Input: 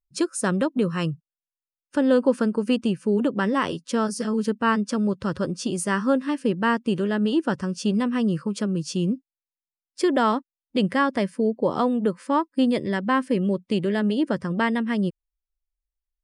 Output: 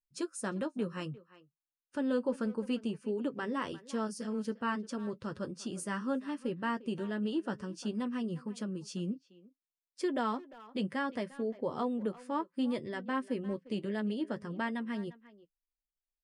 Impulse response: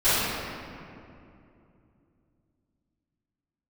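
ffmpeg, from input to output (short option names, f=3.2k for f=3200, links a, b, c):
-filter_complex "[0:a]flanger=delay=7.2:depth=2.3:regen=-46:speed=0.61:shape=triangular,asplit=2[a][b];[b]adelay=350,highpass=300,lowpass=3.4k,asoftclip=type=hard:threshold=-20.5dB,volume=-17dB[c];[a][c]amix=inputs=2:normalize=0,volume=-8.5dB"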